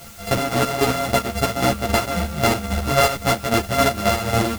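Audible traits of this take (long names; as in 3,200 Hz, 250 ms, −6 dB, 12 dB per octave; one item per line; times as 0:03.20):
a buzz of ramps at a fixed pitch in blocks of 64 samples
chopped level 3.7 Hz, depth 60%, duty 35%
a quantiser's noise floor 8 bits, dither triangular
a shimmering, thickened sound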